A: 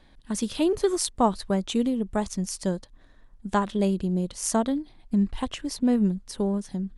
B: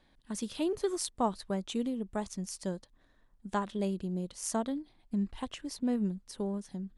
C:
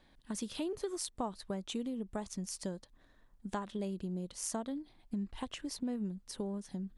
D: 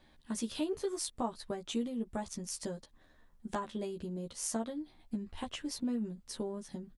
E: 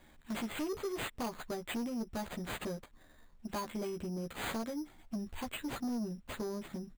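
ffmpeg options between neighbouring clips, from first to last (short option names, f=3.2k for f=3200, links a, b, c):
-af "lowshelf=f=88:g=-6,volume=-8dB"
-af "acompressor=threshold=-38dB:ratio=3,volume=1.5dB"
-filter_complex "[0:a]asplit=2[a][b];[b]adelay=13,volume=-3dB[c];[a][c]amix=inputs=2:normalize=0"
-af "acrusher=samples=8:mix=1:aa=0.000001,asoftclip=type=tanh:threshold=-35.5dB,volume=3dB"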